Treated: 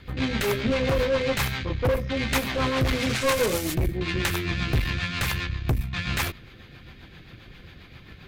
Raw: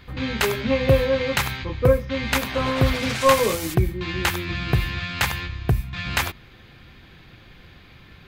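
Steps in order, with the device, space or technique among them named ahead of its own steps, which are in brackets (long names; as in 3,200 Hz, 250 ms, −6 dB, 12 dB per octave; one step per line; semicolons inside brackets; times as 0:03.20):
overdriven rotary cabinet (tube saturation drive 23 dB, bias 0.55; rotating-speaker cabinet horn 7.5 Hz)
level +5.5 dB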